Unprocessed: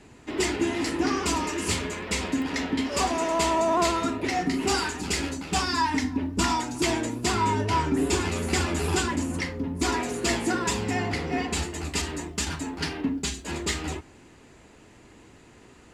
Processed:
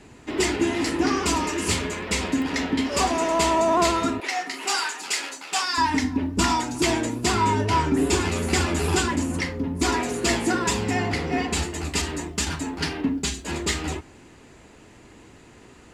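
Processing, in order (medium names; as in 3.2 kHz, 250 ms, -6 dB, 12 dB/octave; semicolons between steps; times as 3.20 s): 4.20–5.78 s: high-pass 770 Hz 12 dB/octave; trim +3 dB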